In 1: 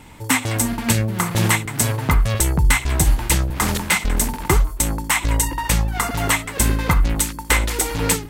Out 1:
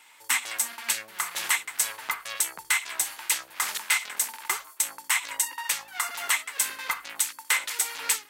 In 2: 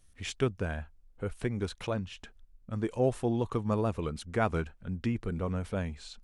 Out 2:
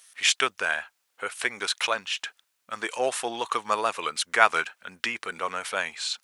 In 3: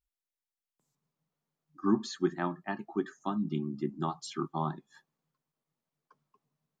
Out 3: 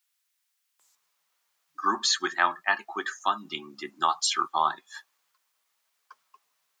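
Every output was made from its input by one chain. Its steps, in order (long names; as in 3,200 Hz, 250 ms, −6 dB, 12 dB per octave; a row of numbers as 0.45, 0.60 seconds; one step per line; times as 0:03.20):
high-pass filter 1,300 Hz 12 dB per octave
loudness normalisation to −27 LKFS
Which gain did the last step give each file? −4.5, +17.5, +17.5 decibels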